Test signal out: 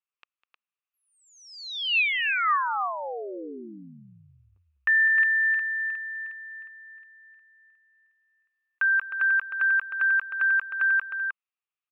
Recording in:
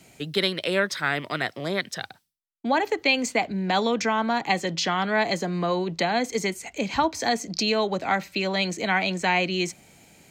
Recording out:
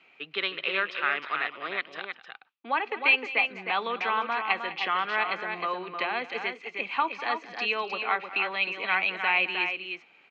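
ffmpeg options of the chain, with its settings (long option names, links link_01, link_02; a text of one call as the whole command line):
ffmpeg -i in.wav -af "highpass=490,equalizer=frequency=630:width_type=q:width=4:gain=-7,equalizer=frequency=1200:width_type=q:width=4:gain=9,equalizer=frequency=2600:width_type=q:width=4:gain=10,lowpass=frequency=3300:width=0.5412,lowpass=frequency=3300:width=1.3066,aecho=1:1:202|310:0.15|0.473,volume=-5dB" out.wav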